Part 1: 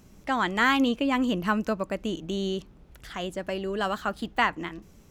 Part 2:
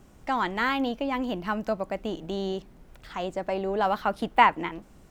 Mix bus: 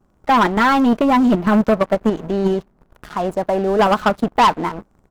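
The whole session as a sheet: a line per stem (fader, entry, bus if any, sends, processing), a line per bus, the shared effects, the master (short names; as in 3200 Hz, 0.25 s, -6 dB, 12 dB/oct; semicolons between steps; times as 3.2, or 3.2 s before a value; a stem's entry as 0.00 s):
-2.0 dB, 0.00 s, no send, sample leveller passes 2; level quantiser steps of 21 dB
-1.0 dB, 5.1 ms, no send, dry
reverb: off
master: resonant high shelf 1700 Hz -9 dB, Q 1.5; sample leveller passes 3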